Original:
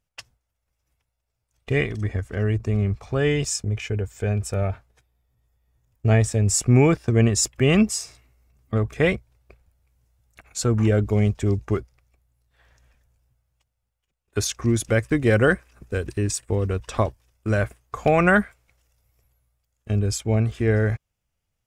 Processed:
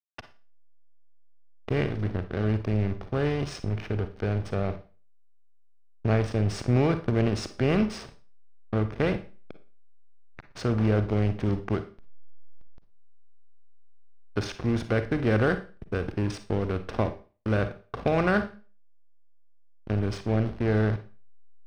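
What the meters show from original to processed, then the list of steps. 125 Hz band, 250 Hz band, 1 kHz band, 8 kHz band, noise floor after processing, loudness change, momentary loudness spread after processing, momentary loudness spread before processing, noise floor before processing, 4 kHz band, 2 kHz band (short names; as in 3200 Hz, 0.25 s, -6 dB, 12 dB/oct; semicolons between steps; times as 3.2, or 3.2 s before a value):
-5.5 dB, -4.0 dB, -4.5 dB, -21.0 dB, -53 dBFS, -5.5 dB, 9 LU, 10 LU, -79 dBFS, -8.0 dB, -7.5 dB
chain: per-bin compression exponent 0.6; dynamic EQ 1900 Hz, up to -4 dB, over -37 dBFS, Q 3.8; backlash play -19.5 dBFS; polynomial smoothing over 15 samples; Schroeder reverb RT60 0.36 s, DRR 10 dB; gain -8 dB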